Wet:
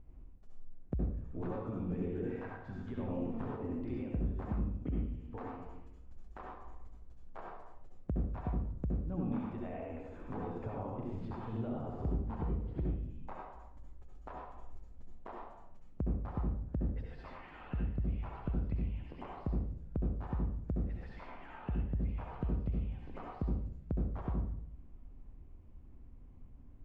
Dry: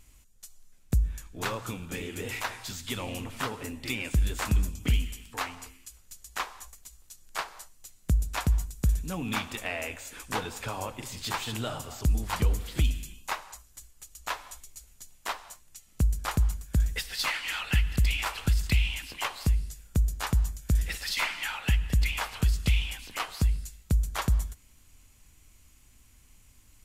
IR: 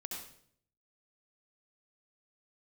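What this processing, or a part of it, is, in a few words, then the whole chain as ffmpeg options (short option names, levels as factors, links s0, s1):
television next door: -filter_complex "[0:a]asettb=1/sr,asplit=3[s0][s1][s2];[s0]atrim=end=2.144[s3];[s1]atrim=start=2.14:end=2.97,asetpts=PTS-STARTPTS,afade=t=in:d=0.004:c=qsin,afade=t=out:st=0.826:d=0.004:c=qsin,equalizer=f=1600:t=o:w=0.22:g=14.5[s4];[s2]atrim=start=2.966[s5];[s3][s4]acrossfade=d=0.004:c1=hsin:c2=qsin[s6];[s6][s5]acrossfade=d=0.004:c1=qsin:c2=hsin,acompressor=threshold=0.0141:ratio=5,lowpass=600[s7];[1:a]atrim=start_sample=2205[s8];[s7][s8]afir=irnorm=-1:irlink=0,volume=2.11"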